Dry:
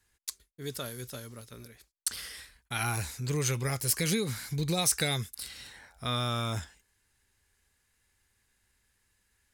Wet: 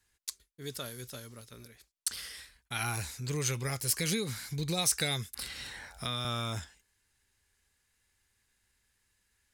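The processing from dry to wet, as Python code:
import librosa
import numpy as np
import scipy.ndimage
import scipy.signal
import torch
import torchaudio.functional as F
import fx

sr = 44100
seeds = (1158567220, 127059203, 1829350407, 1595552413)

y = fx.peak_eq(x, sr, hz=4600.0, db=3.0, octaves=2.5)
y = fx.band_squash(y, sr, depth_pct=70, at=(5.33, 6.25))
y = y * 10.0 ** (-3.5 / 20.0)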